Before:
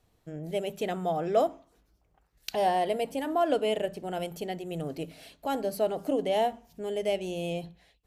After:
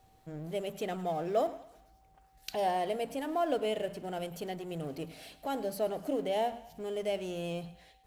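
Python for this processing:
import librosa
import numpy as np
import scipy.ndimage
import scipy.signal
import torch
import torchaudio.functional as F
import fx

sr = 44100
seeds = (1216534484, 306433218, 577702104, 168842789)

y = fx.law_mismatch(x, sr, coded='mu')
y = fx.echo_thinned(y, sr, ms=106, feedback_pct=50, hz=420.0, wet_db=-16.5)
y = y + 10.0 ** (-59.0 / 20.0) * np.sin(2.0 * np.pi * 770.0 * np.arange(len(y)) / sr)
y = y * librosa.db_to_amplitude(-5.5)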